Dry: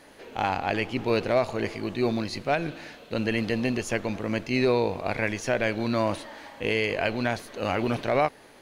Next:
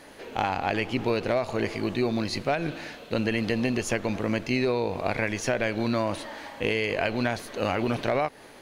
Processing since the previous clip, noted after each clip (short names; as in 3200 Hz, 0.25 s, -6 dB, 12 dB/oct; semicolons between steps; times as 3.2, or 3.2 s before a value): compressor, threshold -25 dBFS, peak gain reduction 7.5 dB; gain +3.5 dB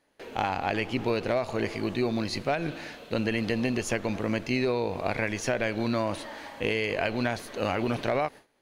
gate with hold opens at -35 dBFS; gain -1.5 dB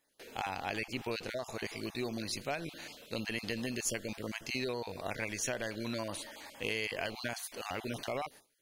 random spectral dropouts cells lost 21%; pre-emphasis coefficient 0.8; gain +3.5 dB